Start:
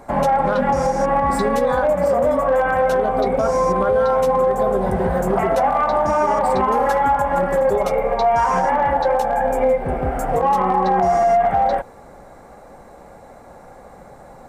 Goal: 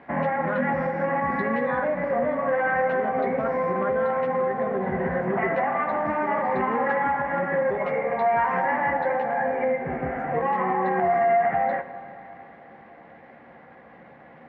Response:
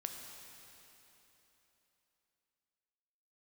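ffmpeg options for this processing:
-filter_complex "[0:a]acrusher=bits=9:dc=4:mix=0:aa=0.000001,highpass=160,equalizer=frequency=420:width_type=q:width=4:gain=-6,equalizer=frequency=600:width_type=q:width=4:gain=-6,equalizer=frequency=860:width_type=q:width=4:gain=-6,equalizer=frequency=1300:width_type=q:width=4:gain=-5,equalizer=frequency=1900:width_type=q:width=4:gain=9,lowpass=frequency=2400:width=0.5412,lowpass=frequency=2400:width=1.3066,asplit=2[link_01][link_02];[1:a]atrim=start_sample=2205,adelay=13[link_03];[link_02][link_03]afir=irnorm=-1:irlink=0,volume=-6dB[link_04];[link_01][link_04]amix=inputs=2:normalize=0,volume=-3dB"

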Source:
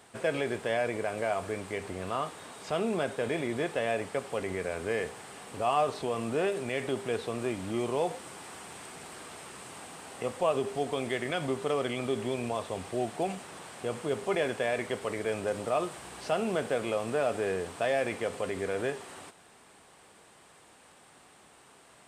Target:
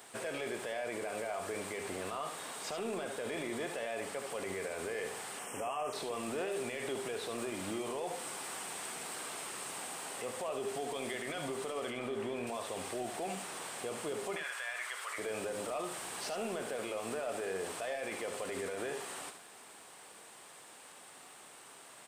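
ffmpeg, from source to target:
ffmpeg -i in.wav -filter_complex "[0:a]aemphasis=mode=production:type=bsi,asettb=1/sr,asplit=3[link_01][link_02][link_03];[link_01]atrim=end=11.904[link_04];[link_02]atrim=start=11.9:end=12.47,asetpts=PTS-STARTPTS,afade=type=in:duration=0.004:curve=qsin,afade=type=out:start_time=0.566:duration=0.004:curve=qsin,acrossover=split=2900[link_05][link_06];[link_06]acompressor=threshold=-51dB:ratio=4:attack=1:release=60[link_07];[link_05][link_07]amix=inputs=2:normalize=0[link_08];[link_03]atrim=start=12.466[link_09];[link_04][link_08]acrossfade=duration=0.004:curve1=hsin:curve2=qsin[link_10];[link_10][link_09]acrossfade=duration=0.004:curve1=qsin:curve2=hsin,highshelf=frequency=6200:gain=-9,acompressor=threshold=-33dB:ratio=2.5,alimiter=level_in=6dB:limit=-24dB:level=0:latency=1:release=14,volume=-6dB,asettb=1/sr,asplit=3[link_11][link_12][link_13];[link_11]atrim=end=14.364[link_14];[link_12]atrim=start=14.36:end=15.18,asetpts=PTS-STARTPTS,afade=type=in:duration=0.004:curve=qsin,afade=type=out:start_time=0.816:duration=0.004:curve=qsin,highpass=frequency=1300:width_type=q:width=1.9[link_15];[link_13]atrim=start=15.176[link_16];[link_14][link_15]acrossfade=duration=0.004:curve1=hsin:curve2=qsin[link_17];[link_17][link_16]acrossfade=duration=0.004:curve1=qsin:curve2=hsin,aeval=exprs='0.0422*(cos(1*acos(clip(val(0)/0.0422,-1,1)))-cos(1*PI/2))+0.00168*(cos(5*acos(clip(val(0)/0.0422,-1,1)))-cos(5*PI/2))':channel_layout=same,asettb=1/sr,asplit=3[link_18][link_19][link_20];[link_18]atrim=end=5.394[link_21];[link_19]atrim=start=5.39:end=5.93,asetpts=PTS-STARTPTS,afade=type=in:duration=0.004:curve=qsin,afade=type=out:start_time=0.536:duration=0.004:curve=qsin,asuperstop=centerf=4100:order=12:qfactor=2.1[link_22];[link_20]atrim=start=5.926[link_23];[link_21][link_22]acrossfade=duration=0.004:curve1=hsin:curve2=qsin[link_24];[link_24][link_23]acrossfade=duration=0.004:curve1=qsin:curve2=hsin,aecho=1:1:73:0.376" out.wav

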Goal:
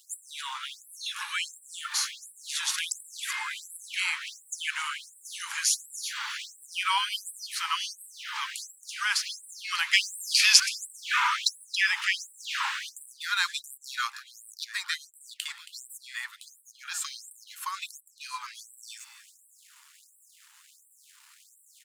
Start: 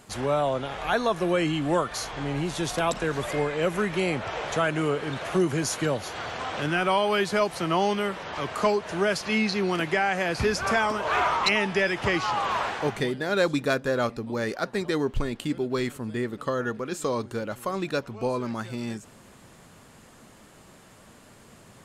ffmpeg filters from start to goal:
ffmpeg -i in.wav -filter_complex "[0:a]equalizer=frequency=690:width_type=o:width=2.3:gain=-9,aeval=exprs='sgn(val(0))*max(abs(val(0))-0.00133,0)':channel_layout=same,asettb=1/sr,asplit=3[link_01][link_02][link_03];[link_01]atrim=end=9.934[link_04];[link_02]atrim=start=9.93:end=10.6,asetpts=PTS-STARTPTS,afade=type=in:duration=0.004:curve=qsin,afade=type=out:start_time=0.666:duration=0.004:curve=qsin,highshelf=frequency=2100:width_type=q:width=1.5:gain=9.5[link_05];[link_03]atrim=start=10.596[link_06];[link_04][link_05]acrossfade=duration=0.004:curve1=hsin:curve2=qsin[link_07];[link_07][link_06]acrossfade=duration=0.004:curve1=qsin:curve2=hsin,asplit=2[link_08][link_09];[link_09]aecho=0:1:274:0.2[link_10];[link_08][link_10]amix=inputs=2:normalize=0,afftfilt=real='re*gte(b*sr/1024,790*pow(7700/790,0.5+0.5*sin(2*PI*1.4*pts/sr)))':imag='im*gte(b*sr/1024,790*pow(7700/790,0.5+0.5*sin(2*PI*1.4*pts/sr)))':win_size=1024:overlap=0.75,volume=6.5dB" out.wav

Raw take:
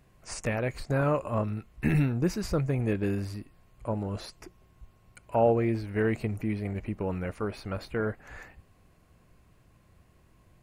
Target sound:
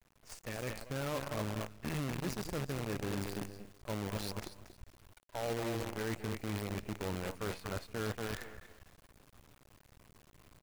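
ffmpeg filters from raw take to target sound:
ffmpeg -i in.wav -af "adynamicequalizer=threshold=0.00708:dfrequency=160:dqfactor=1.6:tfrequency=160:tqfactor=1.6:attack=5:release=100:ratio=0.375:range=1.5:mode=cutabove:tftype=bell,aecho=1:1:235|470|705:0.376|0.105|0.0295,areverse,acompressor=threshold=-37dB:ratio=5,areverse,acrusher=bits=7:dc=4:mix=0:aa=0.000001,dynaudnorm=framelen=410:gausssize=3:maxgain=6dB,volume=-6dB" out.wav

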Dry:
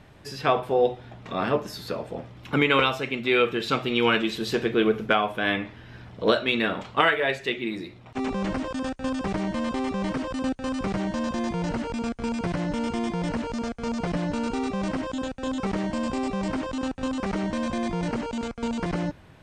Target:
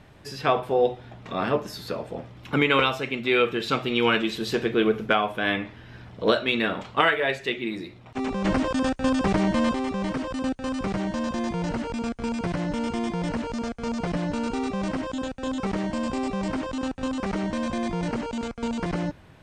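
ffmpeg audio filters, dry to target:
ffmpeg -i in.wav -filter_complex "[0:a]asettb=1/sr,asplit=3[link_01][link_02][link_03];[link_01]atrim=end=8.454[link_04];[link_02]atrim=start=8.45:end=9.74,asetpts=PTS-STARTPTS,afade=type=in:duration=0.004:curve=qsin,afade=type=out:start_time=1.286:duration=0.004:curve=qsin,acontrast=39[link_05];[link_03]atrim=start=9.736[link_06];[link_04][link_05]acrossfade=duration=0.004:curve1=hsin:curve2=qsin[link_07];[link_07][link_06]acrossfade=duration=0.004:curve1=qsin:curve2=hsin" out.wav

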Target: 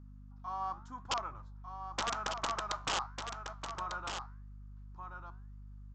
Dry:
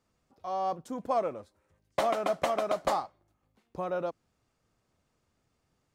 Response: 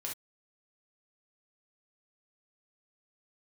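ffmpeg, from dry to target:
-af "firequalizer=gain_entry='entry(110,0);entry(160,-18);entry(340,-16);entry(490,-28);entry(910,0);entry(1400,2);entry(2100,-10)':delay=0.05:min_phase=1,flanger=delay=9:depth=7.1:regen=-82:speed=0.88:shape=sinusoidal,aresample=16000,aeval=exprs='(mod(37.6*val(0)+1,2)-1)/37.6':channel_layout=same,aresample=44100,aeval=exprs='val(0)+0.00178*(sin(2*PI*50*n/s)+sin(2*PI*2*50*n/s)/2+sin(2*PI*3*50*n/s)/3+sin(2*PI*4*50*n/s)/4+sin(2*PI*5*50*n/s)/5)':channel_layout=same,aecho=1:1:1198:0.447,volume=4.5dB"

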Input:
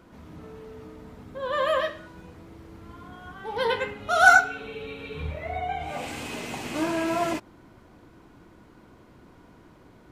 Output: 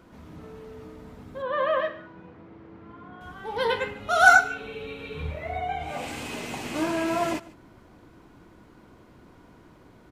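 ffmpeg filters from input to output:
ffmpeg -i in.wav -filter_complex "[0:a]asettb=1/sr,asplit=3[link_01][link_02][link_03];[link_01]atrim=end=1.424[link_04];[link_02]atrim=start=1.42:end=3.21,asetpts=PTS-STARTPTS,afade=type=in:duration=0.004:curve=qsin,afade=type=out:start_time=1.786:duration=0.004:curve=qsin,highpass=120,lowpass=2300[link_05];[link_03]atrim=start=3.206[link_06];[link_04][link_05]acrossfade=duration=0.004:curve1=hsin:curve2=qsin[link_07];[link_07][link_06]acrossfade=duration=0.004:curve1=qsin:curve2=hsin,aecho=1:1:146:0.0891" out.wav

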